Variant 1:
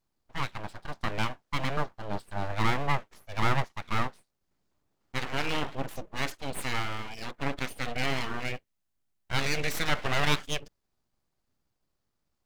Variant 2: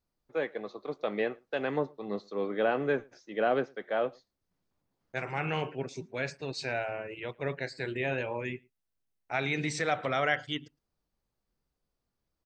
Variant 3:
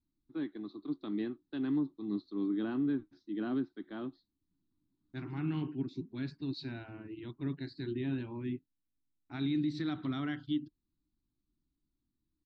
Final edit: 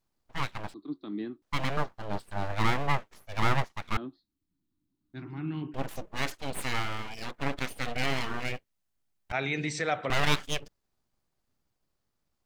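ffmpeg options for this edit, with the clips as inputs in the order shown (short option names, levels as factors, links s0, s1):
-filter_complex "[2:a]asplit=2[s0][s1];[0:a]asplit=4[s2][s3][s4][s5];[s2]atrim=end=0.742[s6];[s0]atrim=start=0.738:end=1.422[s7];[s3]atrim=start=1.418:end=3.972[s8];[s1]atrim=start=3.968:end=5.742[s9];[s4]atrim=start=5.738:end=9.322[s10];[1:a]atrim=start=9.318:end=10.102[s11];[s5]atrim=start=10.098[s12];[s6][s7]acrossfade=d=0.004:c1=hsin:c2=hsin[s13];[s13][s8]acrossfade=d=0.004:c1=hsin:c2=hsin[s14];[s14][s9]acrossfade=d=0.004:c1=hsin:c2=hsin[s15];[s15][s10]acrossfade=d=0.004:c1=hsin:c2=hsin[s16];[s16][s11]acrossfade=d=0.004:c1=hsin:c2=hsin[s17];[s17][s12]acrossfade=d=0.004:c1=hsin:c2=hsin"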